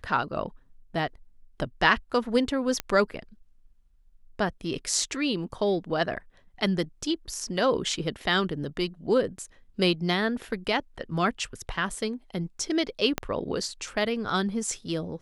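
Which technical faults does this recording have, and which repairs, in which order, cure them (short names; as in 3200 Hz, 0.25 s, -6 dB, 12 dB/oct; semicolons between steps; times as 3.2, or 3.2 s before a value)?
2.8 pop -12 dBFS
13.18 pop -11 dBFS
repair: de-click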